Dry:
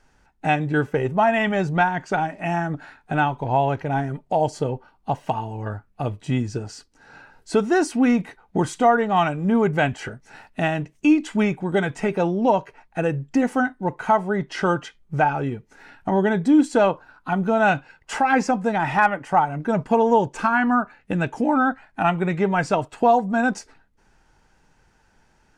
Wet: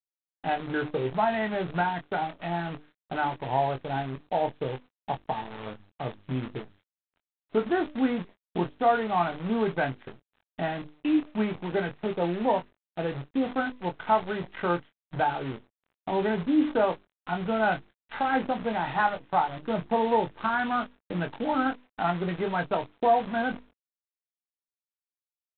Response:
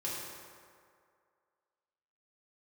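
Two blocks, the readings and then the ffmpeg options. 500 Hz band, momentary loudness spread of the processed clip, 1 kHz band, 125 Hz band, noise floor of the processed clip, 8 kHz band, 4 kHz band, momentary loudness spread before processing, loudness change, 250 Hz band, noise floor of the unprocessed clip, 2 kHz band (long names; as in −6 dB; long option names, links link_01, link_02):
−6.5 dB, 11 LU, −6.0 dB, −9.5 dB, below −85 dBFS, below −40 dB, −4.0 dB, 11 LU, −7.0 dB, −8.0 dB, −61 dBFS, −7.5 dB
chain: -filter_complex "[0:a]afwtdn=0.0282,acrossover=split=430|2100[link_01][link_02][link_03];[link_03]acompressor=threshold=-45dB:ratio=10[link_04];[link_01][link_02][link_04]amix=inputs=3:normalize=0,highpass=frequency=160:poles=1,bandreject=frequency=50:width_type=h:width=6,bandreject=frequency=100:width_type=h:width=6,bandreject=frequency=150:width_type=h:width=6,bandreject=frequency=200:width_type=h:width=6,bandreject=frequency=250:width_type=h:width=6,bandreject=frequency=300:width_type=h:width=6,aresample=11025,acrusher=bits=6:dc=4:mix=0:aa=0.000001,aresample=44100,asplit=2[link_05][link_06];[link_06]adelay=23,volume=-7.5dB[link_07];[link_05][link_07]amix=inputs=2:normalize=0,volume=-6.5dB" -ar 8000 -c:a adpcm_g726 -b:a 24k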